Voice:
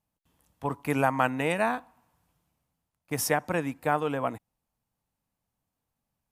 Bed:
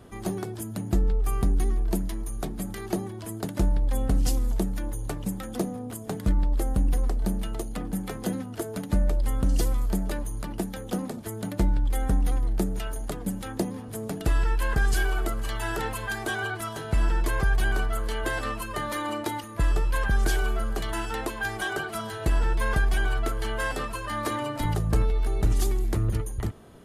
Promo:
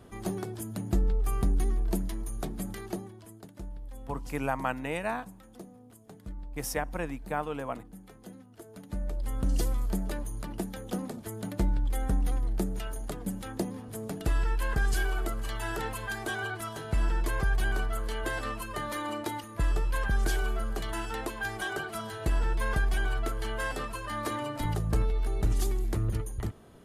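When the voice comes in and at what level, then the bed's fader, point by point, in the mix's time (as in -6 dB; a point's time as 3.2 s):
3.45 s, -6.0 dB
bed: 2.72 s -3 dB
3.51 s -18 dB
8.5 s -18 dB
9.5 s -4 dB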